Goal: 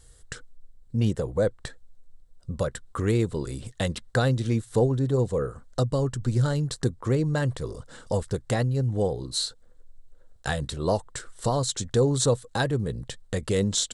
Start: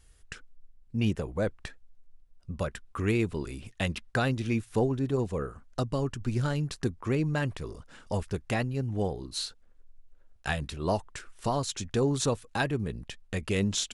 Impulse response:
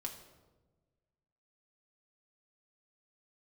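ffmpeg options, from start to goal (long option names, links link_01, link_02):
-filter_complex "[0:a]equalizer=frequency=125:width_type=o:width=0.33:gain=7,equalizer=frequency=500:width_type=o:width=0.33:gain=8,equalizer=frequency=2500:width_type=o:width=0.33:gain=-11,equalizer=frequency=4000:width_type=o:width=0.33:gain=5,equalizer=frequency=8000:width_type=o:width=0.33:gain=9,asplit=2[link_01][link_02];[link_02]acompressor=threshold=-36dB:ratio=6,volume=-2.5dB[link_03];[link_01][link_03]amix=inputs=2:normalize=0"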